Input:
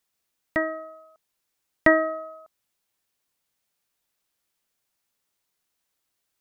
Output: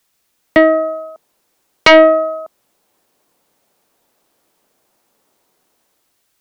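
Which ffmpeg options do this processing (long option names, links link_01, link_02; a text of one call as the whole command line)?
ffmpeg -i in.wav -filter_complex "[0:a]acrossover=split=200|960[link_01][link_02][link_03];[link_02]dynaudnorm=framelen=150:gausssize=9:maxgain=13dB[link_04];[link_01][link_04][link_03]amix=inputs=3:normalize=0,aeval=exprs='1.12*sin(PI/2*3.55*val(0)/1.12)':channel_layout=same,volume=-2dB" out.wav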